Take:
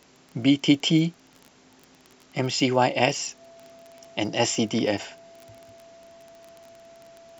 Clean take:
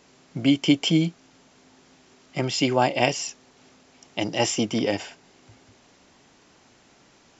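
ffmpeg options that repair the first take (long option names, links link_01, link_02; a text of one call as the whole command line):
ffmpeg -i in.wav -af "adeclick=threshold=4,bandreject=frequency=670:width=30" out.wav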